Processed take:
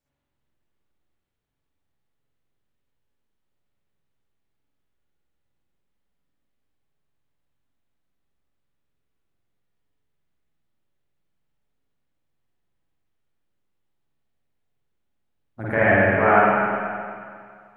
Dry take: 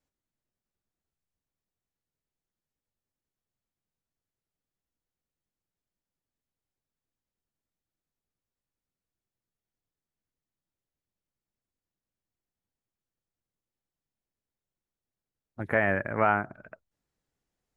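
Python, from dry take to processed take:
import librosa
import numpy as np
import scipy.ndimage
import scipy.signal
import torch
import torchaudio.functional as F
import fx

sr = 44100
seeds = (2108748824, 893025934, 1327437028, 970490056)

y = fx.rev_spring(x, sr, rt60_s=2.1, pass_ms=(44, 51), chirp_ms=20, drr_db=-9.5)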